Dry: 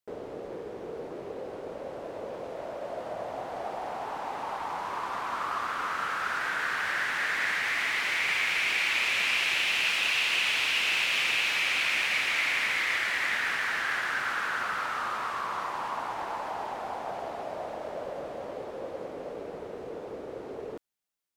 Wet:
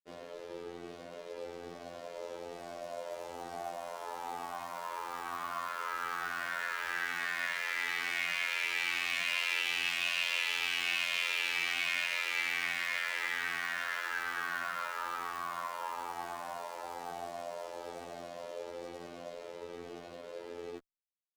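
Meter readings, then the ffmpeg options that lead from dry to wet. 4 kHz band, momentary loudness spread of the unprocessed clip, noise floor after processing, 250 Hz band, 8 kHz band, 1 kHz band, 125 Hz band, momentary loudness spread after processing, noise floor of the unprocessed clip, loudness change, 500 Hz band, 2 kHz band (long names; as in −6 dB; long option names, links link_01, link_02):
−6.5 dB, 15 LU, −48 dBFS, −6.5 dB, −5.5 dB, −6.5 dB, can't be measured, 15 LU, −41 dBFS, −6.5 dB, −6.5 dB, −6.5 dB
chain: -filter_complex "[0:a]lowshelf=frequency=78:gain=-6,acrusher=bits=6:mix=0:aa=0.5,afftfilt=real='hypot(re,im)*cos(PI*b)':imag='0':win_size=2048:overlap=0.75,asplit=2[link_01][link_02];[link_02]adelay=8.5,afreqshift=1.1[link_03];[link_01][link_03]amix=inputs=2:normalize=1"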